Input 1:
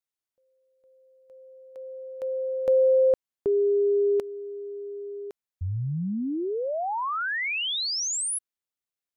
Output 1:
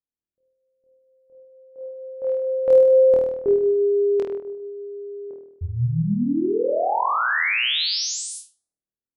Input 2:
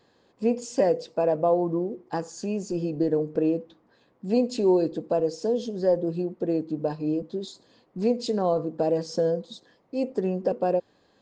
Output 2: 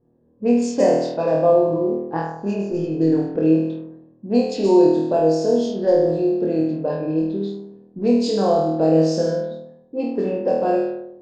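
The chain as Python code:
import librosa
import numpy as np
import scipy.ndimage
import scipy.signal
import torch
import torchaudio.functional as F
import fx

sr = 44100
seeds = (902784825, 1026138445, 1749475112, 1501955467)

y = fx.room_flutter(x, sr, wall_m=4.3, rt60_s=0.94)
y = fx.env_lowpass(y, sr, base_hz=340.0, full_db=-16.5)
y = y * 10.0 ** (2.0 / 20.0)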